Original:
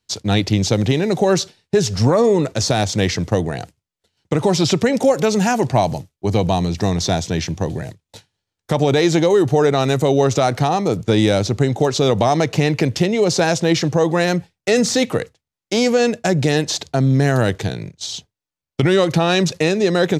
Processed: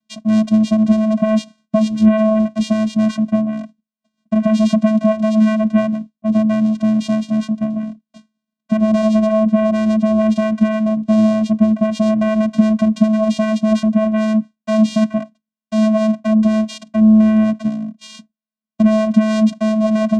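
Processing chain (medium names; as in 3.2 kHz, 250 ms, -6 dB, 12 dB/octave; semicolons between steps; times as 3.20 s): vocoder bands 4, square 217 Hz; trim +3 dB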